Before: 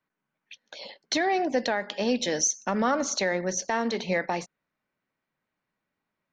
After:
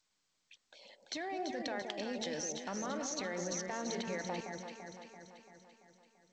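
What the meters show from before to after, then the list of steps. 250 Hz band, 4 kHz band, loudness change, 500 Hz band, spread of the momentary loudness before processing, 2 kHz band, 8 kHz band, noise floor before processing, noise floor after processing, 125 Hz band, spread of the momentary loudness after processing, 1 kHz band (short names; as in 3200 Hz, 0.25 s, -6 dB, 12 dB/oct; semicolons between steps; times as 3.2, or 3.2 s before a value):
-11.5 dB, -10.5 dB, -12.5 dB, -12.0 dB, 17 LU, -13.0 dB, -12.0 dB, -85 dBFS, -80 dBFS, -9.5 dB, 18 LU, -13.0 dB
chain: level quantiser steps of 18 dB; echo with dull and thin repeats by turns 0.169 s, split 840 Hz, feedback 75%, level -3.5 dB; gain -4 dB; G.722 64 kbps 16000 Hz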